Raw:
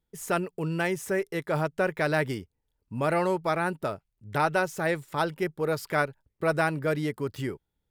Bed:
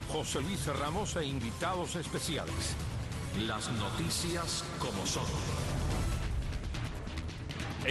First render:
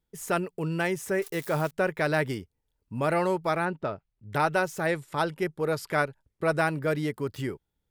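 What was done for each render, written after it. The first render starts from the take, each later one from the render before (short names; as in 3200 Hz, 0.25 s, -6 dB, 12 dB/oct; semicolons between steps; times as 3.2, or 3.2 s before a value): 1.22–1.71 switching spikes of -31.5 dBFS; 3.65–4.33 air absorption 160 m; 4.86–6.59 brick-wall FIR low-pass 13000 Hz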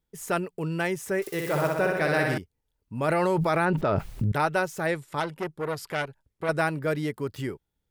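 1.21–2.38 flutter echo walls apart 10.6 m, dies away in 1.1 s; 3.08–4.32 fast leveller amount 100%; 5.2–6.49 core saturation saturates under 1700 Hz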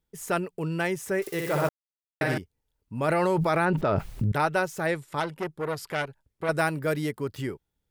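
1.69–2.21 mute; 6.52–7.11 high shelf 7400 Hz +8.5 dB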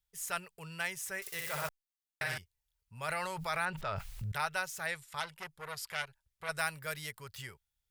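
passive tone stack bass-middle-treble 10-0-10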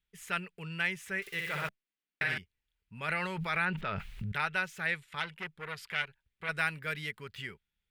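EQ curve 130 Hz 0 dB, 190 Hz +11 dB, 410 Hz +6 dB, 630 Hz -3 dB, 1100 Hz -1 dB, 1500 Hz +4 dB, 2400 Hz +7 dB, 3400 Hz +3 dB, 5400 Hz -8 dB, 13000 Hz -12 dB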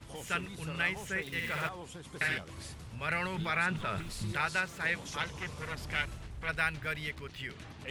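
add bed -10 dB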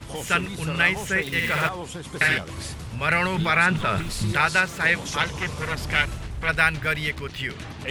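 gain +11.5 dB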